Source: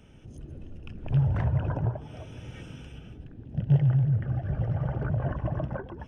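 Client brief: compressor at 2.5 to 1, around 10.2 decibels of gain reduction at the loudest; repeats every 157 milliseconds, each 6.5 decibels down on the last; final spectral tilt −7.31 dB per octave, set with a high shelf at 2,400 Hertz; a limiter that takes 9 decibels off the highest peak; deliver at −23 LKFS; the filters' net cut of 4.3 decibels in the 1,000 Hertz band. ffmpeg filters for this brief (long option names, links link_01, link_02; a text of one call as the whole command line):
ffmpeg -i in.wav -af "equalizer=frequency=1000:width_type=o:gain=-7,highshelf=frequency=2400:gain=6.5,acompressor=threshold=-32dB:ratio=2.5,alimiter=level_in=7dB:limit=-24dB:level=0:latency=1,volume=-7dB,aecho=1:1:157|314|471|628|785|942:0.473|0.222|0.105|0.0491|0.0231|0.0109,volume=16dB" out.wav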